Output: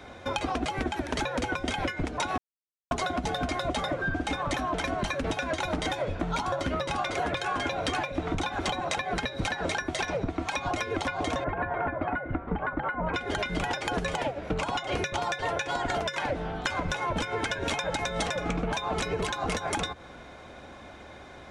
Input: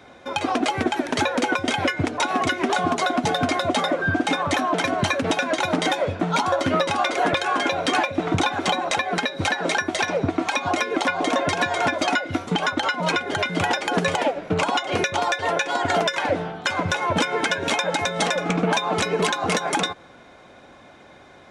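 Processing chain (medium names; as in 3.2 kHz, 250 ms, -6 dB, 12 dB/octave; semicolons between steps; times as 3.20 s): octave divider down 2 oct, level -1 dB; 2.38–2.91 s: mute; 11.44–13.14 s: low-pass 1.8 kHz 24 dB/octave; compression 6:1, threshold -28 dBFS, peak gain reduction 12 dB; trim +1 dB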